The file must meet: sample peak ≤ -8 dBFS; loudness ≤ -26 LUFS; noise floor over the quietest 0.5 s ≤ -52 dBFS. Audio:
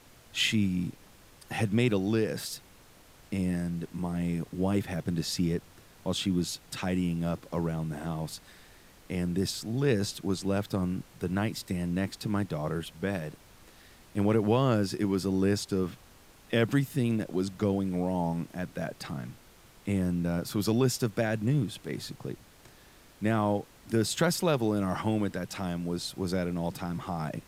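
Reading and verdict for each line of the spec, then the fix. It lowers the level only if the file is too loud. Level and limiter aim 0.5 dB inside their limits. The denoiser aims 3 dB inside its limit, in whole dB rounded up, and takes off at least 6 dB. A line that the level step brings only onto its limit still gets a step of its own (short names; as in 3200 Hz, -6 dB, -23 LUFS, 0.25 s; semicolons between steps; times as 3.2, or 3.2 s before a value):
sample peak -12.0 dBFS: OK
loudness -30.5 LUFS: OK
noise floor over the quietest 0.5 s -56 dBFS: OK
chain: none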